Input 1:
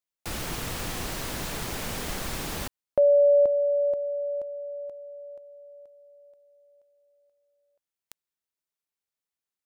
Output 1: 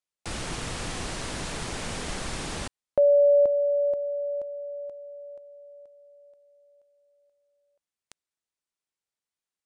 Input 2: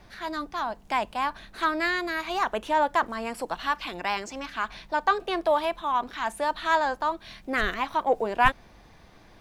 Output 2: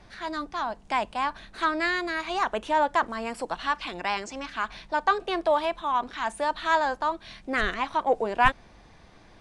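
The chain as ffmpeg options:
-af "aresample=22050,aresample=44100"

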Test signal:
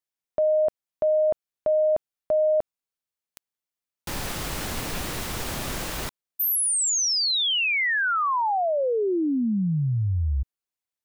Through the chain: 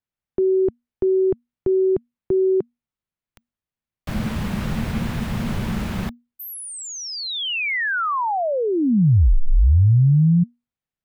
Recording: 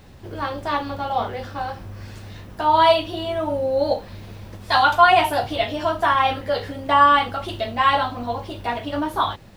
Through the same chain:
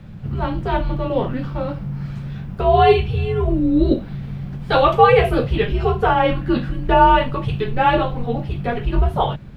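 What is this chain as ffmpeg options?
-af "afreqshift=-240,bass=f=250:g=9,treble=f=4000:g=-12,volume=1.19"

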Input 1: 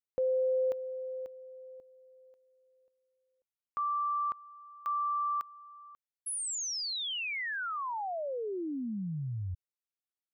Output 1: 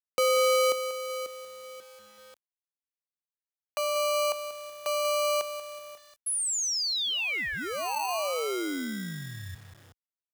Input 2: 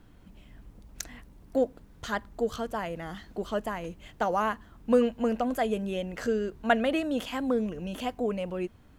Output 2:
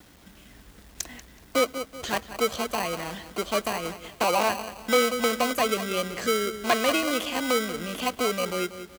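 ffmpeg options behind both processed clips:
-filter_complex "[0:a]asplit=2[s0][s1];[s1]adelay=188,lowpass=f=3500:p=1,volume=0.224,asplit=2[s2][s3];[s3]adelay=188,lowpass=f=3500:p=1,volume=0.39,asplit=2[s4][s5];[s5]adelay=188,lowpass=f=3500:p=1,volume=0.39,asplit=2[s6][s7];[s7]adelay=188,lowpass=f=3500:p=1,volume=0.39[s8];[s0][s2][s4][s6][s8]amix=inputs=5:normalize=0,acrossover=split=1500[s9][s10];[s9]acrusher=samples=25:mix=1:aa=0.000001[s11];[s11][s10]amix=inputs=2:normalize=0,acrossover=split=400[s12][s13];[s12]acompressor=threshold=0.0126:ratio=6:attack=38:release=89:knee=2.83:detection=peak[s14];[s14][s13]amix=inputs=2:normalize=0,equalizer=f=120:t=o:w=0.83:g=-5,acompressor=mode=upward:threshold=0.00126:ratio=1.5:attack=66:release=536:knee=2.83:detection=peak,agate=range=0.0224:threshold=0.00158:ratio=3:release=320:detection=rms,acrusher=bits=9:mix=0:aa=0.000001,volume=11.2,asoftclip=hard,volume=0.0891,highpass=54,lowshelf=f=260:g=-5,volume=2.11"

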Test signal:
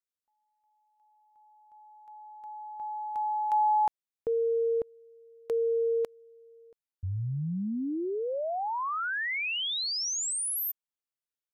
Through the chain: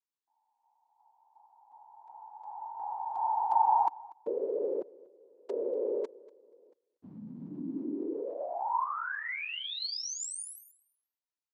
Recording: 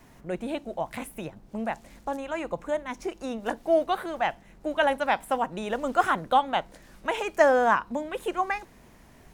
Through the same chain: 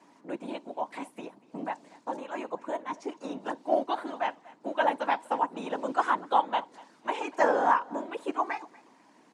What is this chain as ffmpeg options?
-af "afftfilt=real='hypot(re,im)*cos(2*PI*random(0))':imag='hypot(re,im)*sin(2*PI*random(1))':win_size=512:overlap=0.75,highpass=f=210:w=0.5412,highpass=f=210:w=1.3066,equalizer=f=290:t=q:w=4:g=6,equalizer=f=960:t=q:w=4:g=9,equalizer=f=4500:t=q:w=4:g=3,lowpass=f=8800:w=0.5412,lowpass=f=8800:w=1.3066,aecho=1:1:240|480:0.0794|0.0119"

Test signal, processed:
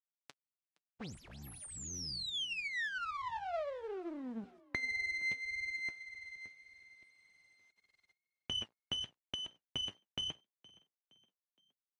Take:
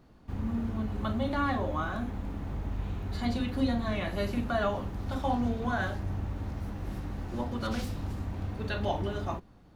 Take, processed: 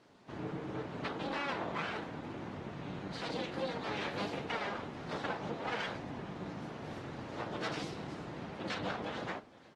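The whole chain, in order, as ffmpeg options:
-filter_complex "[0:a]bass=f=250:g=-1,treble=f=4000:g=4,bandreject=f=60:t=h:w=6,bandreject=f=120:t=h:w=6,bandreject=f=180:t=h:w=6,bandreject=f=240:t=h:w=6,bandreject=f=300:t=h:w=6,bandreject=f=360:t=h:w=6,bandreject=f=420:t=h:w=6,bandreject=f=480:t=h:w=6,bandreject=f=540:t=h:w=6,bandreject=f=600:t=h:w=6,acompressor=threshold=0.0355:ratio=8,flanger=delay=2.9:depth=7.7:regen=42:speed=0.85:shape=sinusoidal,aeval=exprs='abs(val(0))':c=same,acrusher=bits=11:mix=0:aa=0.000001,highpass=130,lowpass=5200,asplit=2[s0][s1];[s1]asplit=3[s2][s3][s4];[s2]adelay=467,afreqshift=32,volume=0.075[s5];[s3]adelay=934,afreqshift=64,volume=0.0316[s6];[s4]adelay=1401,afreqshift=96,volume=0.0132[s7];[s5][s6][s7]amix=inputs=3:normalize=0[s8];[s0][s8]amix=inputs=2:normalize=0,volume=1.58" -ar 48000 -c:a aac -b:a 32k

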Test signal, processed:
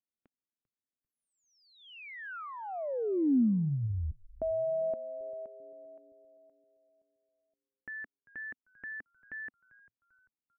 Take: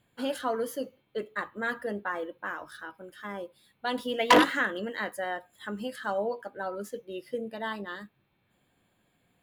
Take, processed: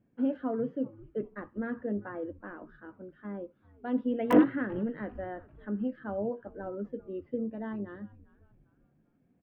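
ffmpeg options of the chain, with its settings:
-filter_complex "[0:a]equalizer=f=250:t=o:w=1:g=10,equalizer=f=1000:t=o:w=1:g=-8,equalizer=f=2000:t=o:w=1:g=-5,equalizer=f=4000:t=o:w=1:g=-9,equalizer=f=8000:t=o:w=1:g=-6,acrossover=split=2500[s0][s1];[s0]asplit=4[s2][s3][s4][s5];[s3]adelay=394,afreqshift=-120,volume=0.0944[s6];[s4]adelay=788,afreqshift=-240,volume=0.0389[s7];[s5]adelay=1182,afreqshift=-360,volume=0.0158[s8];[s2][s6][s7][s8]amix=inputs=4:normalize=0[s9];[s1]acrusher=bits=3:mix=0:aa=0.000001[s10];[s9][s10]amix=inputs=2:normalize=0,volume=0.708"

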